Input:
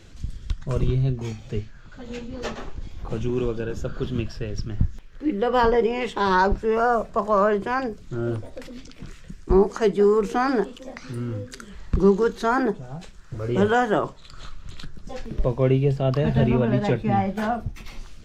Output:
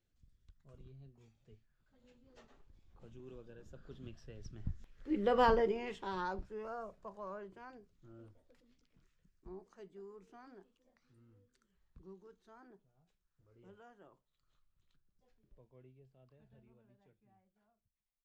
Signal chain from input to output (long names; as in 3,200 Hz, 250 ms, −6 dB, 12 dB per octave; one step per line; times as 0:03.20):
fade-out on the ending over 2.65 s
source passing by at 0:05.35, 10 m/s, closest 2.2 metres
level −8 dB